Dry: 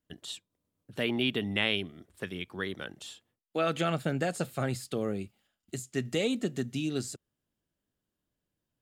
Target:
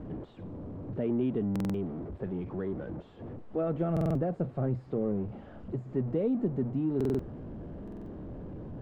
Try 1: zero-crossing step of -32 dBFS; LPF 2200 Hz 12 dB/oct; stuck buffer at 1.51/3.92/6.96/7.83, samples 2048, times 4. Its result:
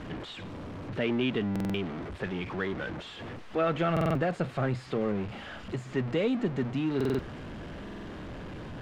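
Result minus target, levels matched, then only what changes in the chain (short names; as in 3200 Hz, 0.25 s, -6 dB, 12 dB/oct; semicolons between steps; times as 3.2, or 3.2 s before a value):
2000 Hz band +16.0 dB
change: LPF 570 Hz 12 dB/oct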